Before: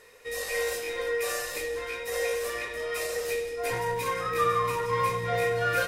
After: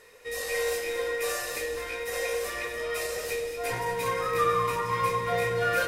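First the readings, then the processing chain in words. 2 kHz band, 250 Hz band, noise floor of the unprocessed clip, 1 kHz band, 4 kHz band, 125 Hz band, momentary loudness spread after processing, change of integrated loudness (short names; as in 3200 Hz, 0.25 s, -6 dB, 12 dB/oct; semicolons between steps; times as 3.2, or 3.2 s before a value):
0.0 dB, +1.0 dB, -38 dBFS, +0.5 dB, +0.5 dB, -1.0 dB, 7 LU, 0.0 dB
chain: echo with dull and thin repeats by turns 0.115 s, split 870 Hz, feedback 60%, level -6 dB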